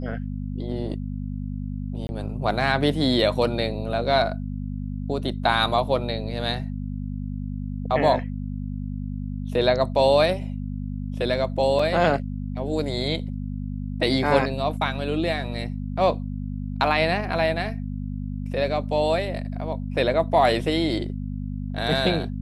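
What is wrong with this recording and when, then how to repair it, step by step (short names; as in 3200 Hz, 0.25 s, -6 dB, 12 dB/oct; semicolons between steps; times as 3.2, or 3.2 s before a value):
hum 50 Hz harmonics 5 -30 dBFS
2.07–2.09 gap 20 ms
11.79 gap 4.1 ms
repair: de-hum 50 Hz, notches 5; interpolate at 2.07, 20 ms; interpolate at 11.79, 4.1 ms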